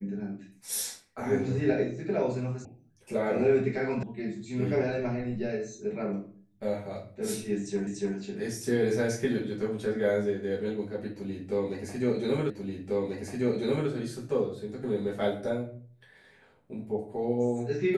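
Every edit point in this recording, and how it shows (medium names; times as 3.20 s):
2.65 s: sound stops dead
4.03 s: sound stops dead
7.87 s: repeat of the last 0.29 s
12.50 s: repeat of the last 1.39 s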